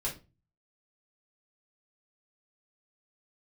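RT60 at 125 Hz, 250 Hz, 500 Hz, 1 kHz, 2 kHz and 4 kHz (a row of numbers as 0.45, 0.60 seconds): 0.60, 0.40, 0.30, 0.25, 0.25, 0.25 seconds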